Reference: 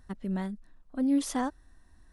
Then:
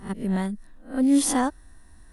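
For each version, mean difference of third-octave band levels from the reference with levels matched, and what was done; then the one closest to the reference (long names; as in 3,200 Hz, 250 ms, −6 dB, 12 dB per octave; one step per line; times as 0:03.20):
2.5 dB: peak hold with a rise ahead of every peak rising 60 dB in 0.32 s
parametric band 9,600 Hz +9 dB 0.38 octaves
level +6.5 dB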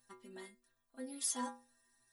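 7.0 dB: RIAA equalisation recording
stiff-string resonator 120 Hz, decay 0.43 s, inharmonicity 0.008
level +2 dB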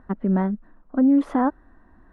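4.5 dB: drawn EQ curve 110 Hz 0 dB, 220 Hz +10 dB, 1,400 Hz +9 dB, 5,800 Hz −23 dB
brickwall limiter −14.5 dBFS, peak gain reduction 5.5 dB
level +3 dB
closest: first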